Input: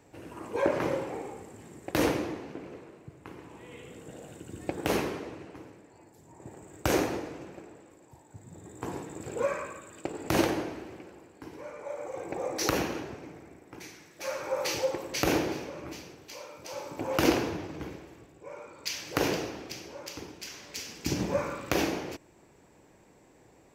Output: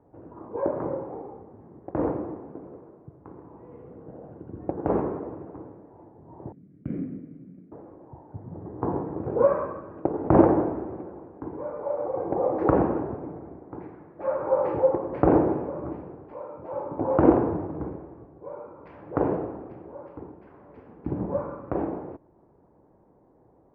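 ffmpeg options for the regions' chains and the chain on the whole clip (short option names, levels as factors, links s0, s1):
-filter_complex "[0:a]asettb=1/sr,asplit=3[s0][s1][s2];[s0]atrim=end=6.524[s3];[s1]atrim=start=6.52:end=7.72,asetpts=PTS-STARTPTS,afade=t=in:d=0.004:c=qsin,afade=t=out:st=1.196:d=0.004:c=qsin,asplit=3[s4][s5][s6];[s4]bandpass=f=270:t=q:w=8,volume=1[s7];[s5]bandpass=f=2290:t=q:w=8,volume=0.501[s8];[s6]bandpass=f=3010:t=q:w=8,volume=0.355[s9];[s7][s8][s9]amix=inputs=3:normalize=0,lowshelf=f=230:t=q:w=3:g=9[s10];[s2]atrim=start=7.716[s11];[s3][s10]acrossfade=d=0.004:c1=hsin:c2=qsin[s12];[s12][s11]acrossfade=d=0.004:c1=qsin:c2=hsin,lowpass=f=1100:w=0.5412,lowpass=f=1100:w=1.3066,dynaudnorm=f=560:g=21:m=3.76"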